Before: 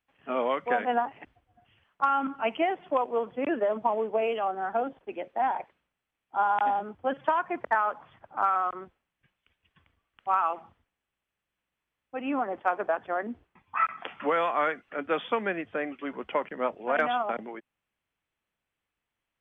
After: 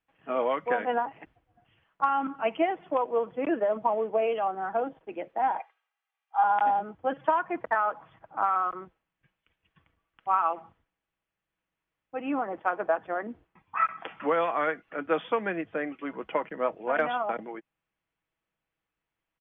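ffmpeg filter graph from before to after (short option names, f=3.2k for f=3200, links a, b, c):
-filter_complex "[0:a]asettb=1/sr,asplit=3[a][b][c];[a]atrim=end=5.594[d];[b]atrim=start=5.59:end=6.44,asetpts=PTS-STARTPTS,afade=t=in:d=0.004:c=qsin,afade=t=out:st=0.846:d=0.004:c=qsin,highpass=f=700:w=0.5412,highpass=f=700:w=1.3066,aecho=1:1:2.5:0.56,atrim=end_sample=37485[e];[c]atrim=start=6.436[f];[d][e]acrossfade=d=0.004:c1=hsin:c2=qsin[g];[g][f]acrossfade=d=0.004:c1=qsin:c2=hsin,lowpass=f=2.6k:p=1,aecho=1:1:6.2:0.33"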